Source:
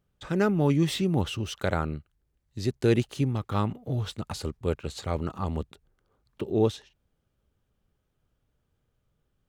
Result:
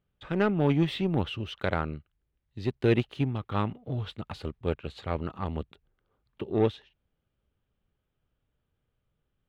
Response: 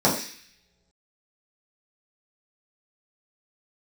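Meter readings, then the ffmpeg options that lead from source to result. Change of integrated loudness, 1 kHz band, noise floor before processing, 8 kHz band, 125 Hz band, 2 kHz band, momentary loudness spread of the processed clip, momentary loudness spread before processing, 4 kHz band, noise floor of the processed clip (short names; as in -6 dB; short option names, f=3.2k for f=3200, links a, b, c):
-1.5 dB, -0.5 dB, -76 dBFS, under -15 dB, -2.5 dB, +0.5 dB, 13 LU, 11 LU, -2.5 dB, -80 dBFS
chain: -af "aeval=exprs='0.299*(cos(1*acos(clip(val(0)/0.299,-1,1)))-cos(1*PI/2))+0.0133*(cos(7*acos(clip(val(0)/0.299,-1,1)))-cos(7*PI/2))':c=same,highshelf=f=4.6k:t=q:w=1.5:g=-12.5,volume=-1dB"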